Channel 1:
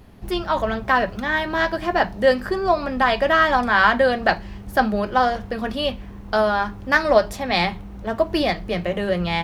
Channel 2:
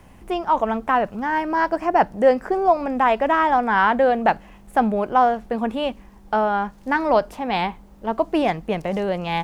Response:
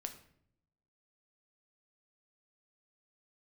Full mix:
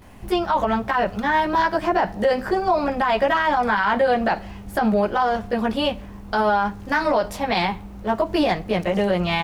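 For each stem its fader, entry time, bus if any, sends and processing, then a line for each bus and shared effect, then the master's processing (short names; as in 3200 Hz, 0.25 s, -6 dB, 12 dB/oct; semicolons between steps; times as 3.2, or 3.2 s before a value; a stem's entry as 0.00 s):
-1.5 dB, 0.00 s, no send, dry
+1.5 dB, 19 ms, send -11.5 dB, bell 130 Hz -5.5 dB 2.6 oct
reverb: on, RT60 0.65 s, pre-delay 7 ms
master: limiter -11 dBFS, peak gain reduction 12 dB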